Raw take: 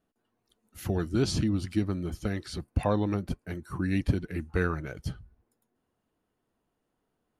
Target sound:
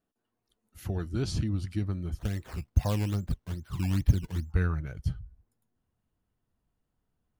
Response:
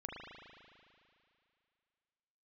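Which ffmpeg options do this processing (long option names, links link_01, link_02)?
-filter_complex "[0:a]asubboost=boost=5:cutoff=150,asplit=3[link_01][link_02][link_03];[link_01]afade=type=out:start_time=2.18:duration=0.02[link_04];[link_02]acrusher=samples=12:mix=1:aa=0.000001:lfo=1:lforange=12:lforate=2.4,afade=type=in:start_time=2.18:duration=0.02,afade=type=out:start_time=4.51:duration=0.02[link_05];[link_03]afade=type=in:start_time=4.51:duration=0.02[link_06];[link_04][link_05][link_06]amix=inputs=3:normalize=0,volume=-5.5dB"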